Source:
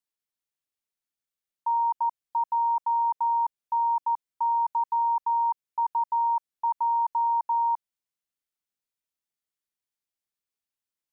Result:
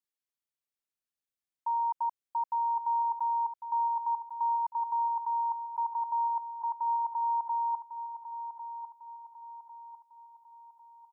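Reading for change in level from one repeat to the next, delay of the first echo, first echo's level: -7.5 dB, 1.1 s, -10.0 dB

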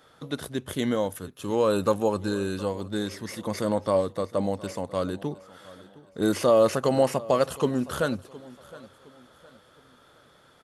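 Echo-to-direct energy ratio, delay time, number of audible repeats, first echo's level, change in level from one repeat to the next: -19.5 dB, 0.714 s, 2, -20.0 dB, -8.5 dB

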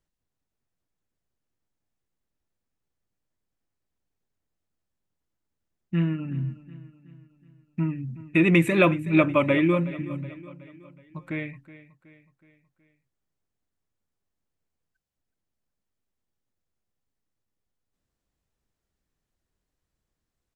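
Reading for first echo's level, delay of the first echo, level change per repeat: -17.0 dB, 0.371 s, -6.0 dB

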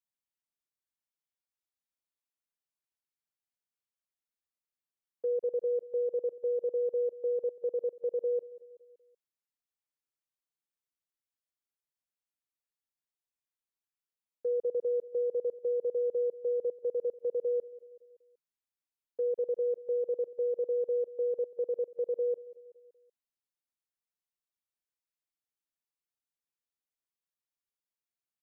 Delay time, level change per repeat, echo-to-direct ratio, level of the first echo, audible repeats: 0.189 s, -5.5 dB, -17.5 dB, -19.0 dB, 3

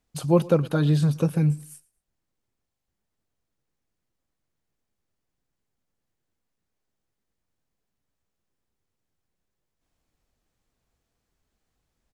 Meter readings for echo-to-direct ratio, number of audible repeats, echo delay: -22.5 dB, 1, 0.113 s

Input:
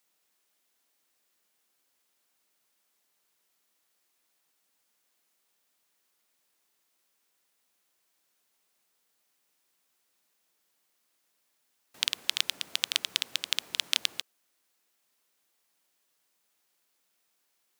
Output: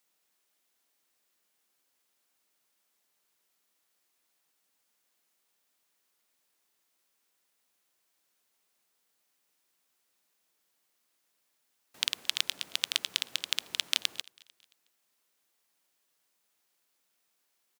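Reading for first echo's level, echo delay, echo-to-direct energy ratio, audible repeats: -24.0 dB, 0.223 s, -23.0 dB, 2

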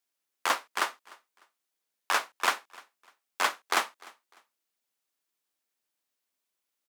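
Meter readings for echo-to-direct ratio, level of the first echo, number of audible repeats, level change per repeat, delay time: -23.0 dB, -23.5 dB, 2, -10.5 dB, 0.3 s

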